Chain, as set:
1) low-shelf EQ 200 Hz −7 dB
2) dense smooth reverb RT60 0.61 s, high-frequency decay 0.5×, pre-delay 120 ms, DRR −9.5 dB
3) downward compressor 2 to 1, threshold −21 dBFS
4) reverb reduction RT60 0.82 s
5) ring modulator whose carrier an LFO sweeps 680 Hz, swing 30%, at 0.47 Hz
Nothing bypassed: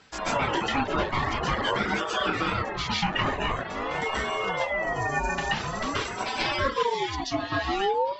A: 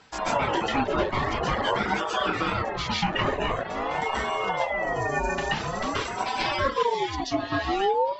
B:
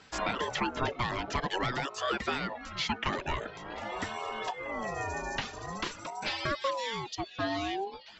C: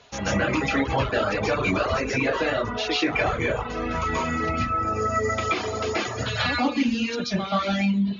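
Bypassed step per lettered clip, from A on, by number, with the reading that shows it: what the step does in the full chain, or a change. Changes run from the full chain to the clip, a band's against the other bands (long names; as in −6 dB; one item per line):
1, 500 Hz band +2.0 dB
2, change in momentary loudness spread +2 LU
5, change in crest factor −2.5 dB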